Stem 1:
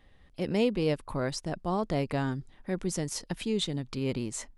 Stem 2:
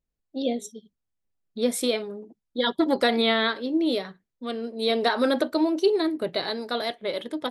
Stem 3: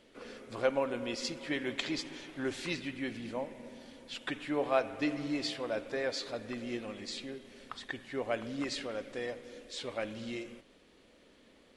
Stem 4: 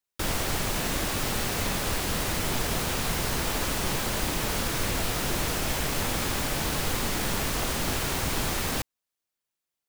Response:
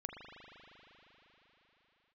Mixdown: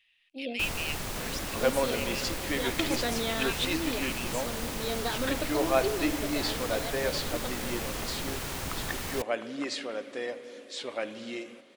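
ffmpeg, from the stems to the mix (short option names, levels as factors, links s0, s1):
-filter_complex "[0:a]highpass=f=2600:t=q:w=7.5,volume=0.531[s0];[1:a]volume=0.299[s1];[2:a]highpass=240,adelay=1000,volume=1.33,asplit=2[s2][s3];[s3]volume=0.188[s4];[3:a]adelay=400,volume=0.447[s5];[4:a]atrim=start_sample=2205[s6];[s4][s6]afir=irnorm=-1:irlink=0[s7];[s0][s1][s2][s5][s7]amix=inputs=5:normalize=0"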